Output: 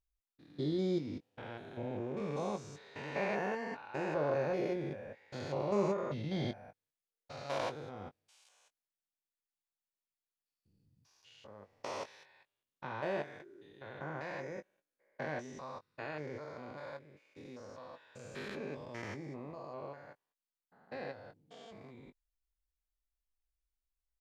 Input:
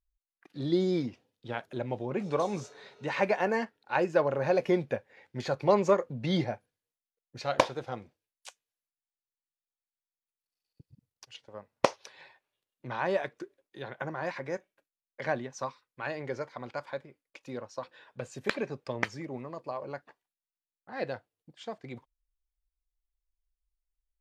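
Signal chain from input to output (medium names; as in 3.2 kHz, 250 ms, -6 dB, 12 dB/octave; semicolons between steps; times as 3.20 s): spectrogram pixelated in time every 200 ms; doubling 20 ms -10 dB; trim -3.5 dB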